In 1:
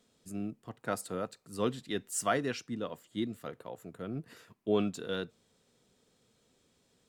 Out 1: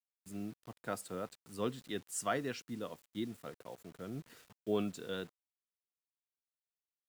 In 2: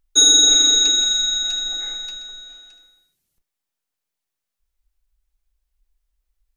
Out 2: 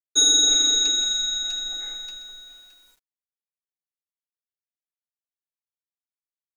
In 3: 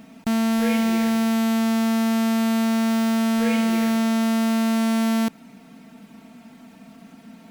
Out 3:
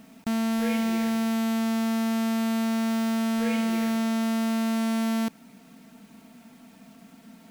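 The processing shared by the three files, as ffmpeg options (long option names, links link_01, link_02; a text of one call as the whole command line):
ffmpeg -i in.wav -af "acrusher=bits=8:mix=0:aa=0.000001,volume=-5dB" out.wav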